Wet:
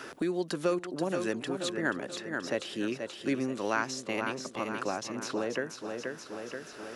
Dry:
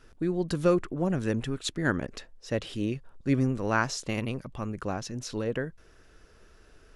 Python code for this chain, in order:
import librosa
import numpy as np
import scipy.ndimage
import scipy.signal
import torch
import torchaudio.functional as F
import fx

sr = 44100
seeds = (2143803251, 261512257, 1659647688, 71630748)

y = scipy.signal.sosfilt(scipy.signal.butter(2, 310.0, 'highpass', fs=sr, output='sos'), x)
y = fx.notch(y, sr, hz=470.0, q=12.0)
y = fx.echo_feedback(y, sr, ms=480, feedback_pct=43, wet_db=-9.5)
y = fx.band_squash(y, sr, depth_pct=70)